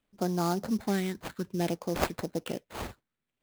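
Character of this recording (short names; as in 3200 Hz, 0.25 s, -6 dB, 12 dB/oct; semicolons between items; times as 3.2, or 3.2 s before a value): phasing stages 4, 0.59 Hz, lowest notch 610–3000 Hz; aliases and images of a low sample rate 5700 Hz, jitter 20%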